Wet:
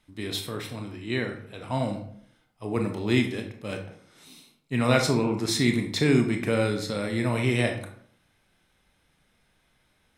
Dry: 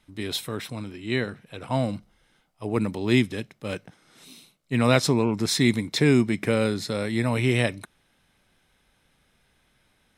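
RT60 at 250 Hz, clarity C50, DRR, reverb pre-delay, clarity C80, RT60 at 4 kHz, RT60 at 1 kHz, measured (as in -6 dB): 0.70 s, 7.5 dB, 3.5 dB, 22 ms, 11.5 dB, 0.40 s, 0.60 s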